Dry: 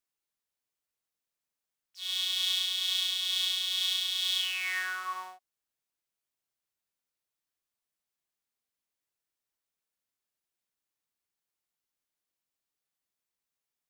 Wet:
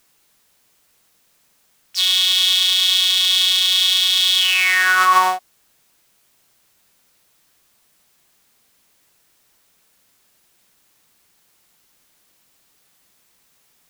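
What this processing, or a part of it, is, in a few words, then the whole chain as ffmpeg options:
mastering chain: -af "equalizer=f=180:t=o:w=0.77:g=3,acompressor=threshold=-34dB:ratio=2.5,asoftclip=type=hard:threshold=-24.5dB,alimiter=level_in=32.5dB:limit=-1dB:release=50:level=0:latency=1,volume=-4dB"

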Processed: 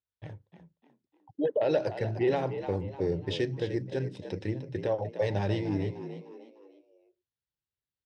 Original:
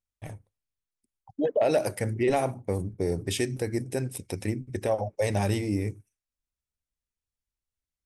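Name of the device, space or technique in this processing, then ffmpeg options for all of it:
frequency-shifting delay pedal into a guitar cabinet: -filter_complex "[0:a]asplit=5[a][b][c][d][e];[b]adelay=301,afreqshift=64,volume=-11dB[f];[c]adelay=602,afreqshift=128,volume=-19dB[g];[d]adelay=903,afreqshift=192,volume=-26.9dB[h];[e]adelay=1204,afreqshift=256,volume=-34.9dB[i];[a][f][g][h][i]amix=inputs=5:normalize=0,highpass=98,equalizer=f=230:t=q:w=4:g=-10,equalizer=f=700:t=q:w=4:g=-8,equalizer=f=1.2k:t=q:w=4:g=-7,equalizer=f=2.3k:t=q:w=4:g=-9,lowpass=f=4.2k:w=0.5412,lowpass=f=4.2k:w=1.3066"

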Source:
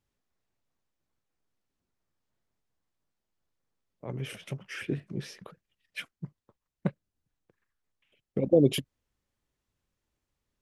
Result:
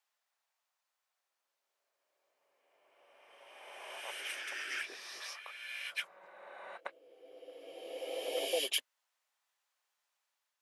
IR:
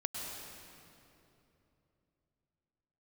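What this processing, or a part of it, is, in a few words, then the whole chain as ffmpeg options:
ghost voice: -filter_complex "[0:a]areverse[a];[1:a]atrim=start_sample=2205[b];[a][b]afir=irnorm=-1:irlink=0,areverse,highpass=f=740:w=0.5412,highpass=f=740:w=1.3066,volume=2dB"

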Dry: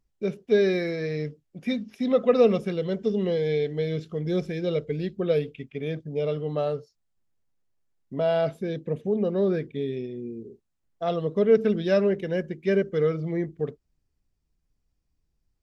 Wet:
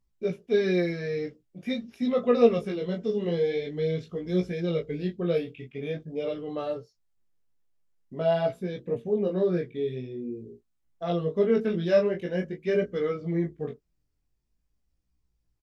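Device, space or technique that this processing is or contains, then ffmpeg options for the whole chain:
double-tracked vocal: -filter_complex "[0:a]asplit=2[a][b];[b]adelay=17,volume=-5.5dB[c];[a][c]amix=inputs=2:normalize=0,flanger=delay=16:depth=8:speed=0.46"

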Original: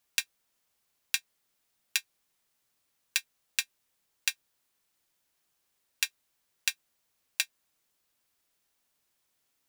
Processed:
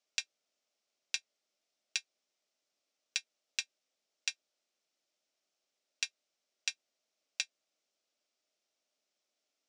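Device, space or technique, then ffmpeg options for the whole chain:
television speaker: -af "highpass=f=220:w=0.5412,highpass=f=220:w=1.3066,equalizer=f=610:t=q:w=4:g=9,equalizer=f=980:t=q:w=4:g=-8,equalizer=f=1.7k:t=q:w=4:g=-6,equalizer=f=5.5k:t=q:w=4:g=4,lowpass=f=7.1k:w=0.5412,lowpass=f=7.1k:w=1.3066,volume=-5.5dB"

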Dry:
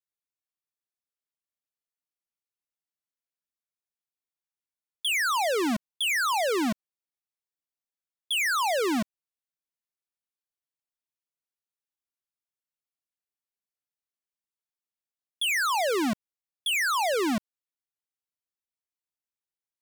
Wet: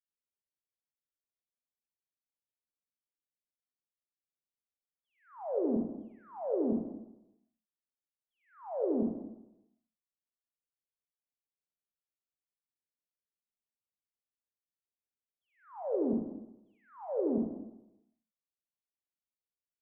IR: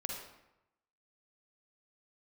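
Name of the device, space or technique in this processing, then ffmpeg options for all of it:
next room: -filter_complex "[0:a]asettb=1/sr,asplit=3[a][b][c];[a]atrim=end=15.824[d];[b]atrim=start=15.82:end=17.22,asetpts=PTS-STARTPTS,afade=t=in:d=0.004:c=qsin,afade=t=out:st=1.396:d=0.004:c=qsin,bandreject=f=680:w=12[e];[c]atrim=start=17.216[f];[d][e]acrossfade=d=0.004:c1=hsin:c2=qsin[g];[g][f]acrossfade=d=0.004:c1=qsin:c2=hsin,lowpass=f=570:w=0.5412,lowpass=f=570:w=1.3066[h];[1:a]atrim=start_sample=2205[i];[h][i]afir=irnorm=-1:irlink=0,volume=-4dB"

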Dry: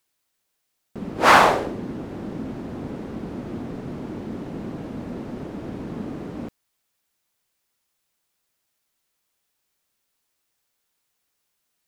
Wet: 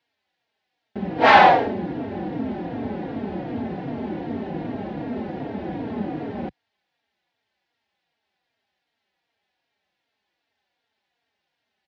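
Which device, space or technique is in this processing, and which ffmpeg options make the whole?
barber-pole flanger into a guitar amplifier: -filter_complex "[0:a]asplit=2[a][b];[b]adelay=3.7,afreqshift=-2.6[c];[a][c]amix=inputs=2:normalize=1,asoftclip=type=tanh:threshold=-15dB,highpass=81,equalizer=f=130:t=q:w=4:g=-5,equalizer=f=770:t=q:w=4:g=8,equalizer=f=1.2k:t=q:w=4:g=-8,equalizer=f=1.8k:t=q:w=4:g=4,lowpass=f=4.1k:w=0.5412,lowpass=f=4.1k:w=1.3066,volume=6.5dB"

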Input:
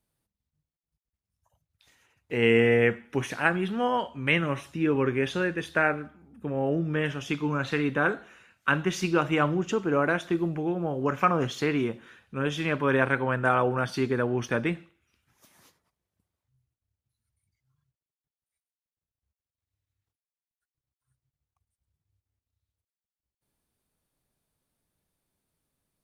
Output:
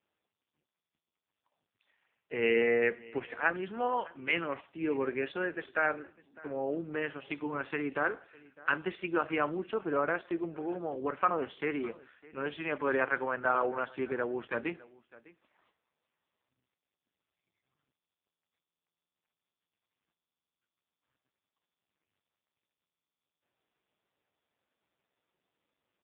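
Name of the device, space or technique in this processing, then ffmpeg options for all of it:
satellite phone: -af "highpass=330,lowpass=3.3k,aecho=1:1:605:0.0794,volume=-3.5dB" -ar 8000 -c:a libopencore_amrnb -b:a 5150

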